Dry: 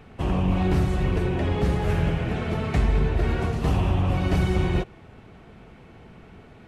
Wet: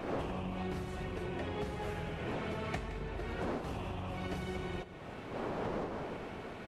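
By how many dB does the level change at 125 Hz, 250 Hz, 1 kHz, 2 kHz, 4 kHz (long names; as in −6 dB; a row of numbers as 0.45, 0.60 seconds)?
−18.0, −13.5, −8.5, −9.5, −10.0 decibels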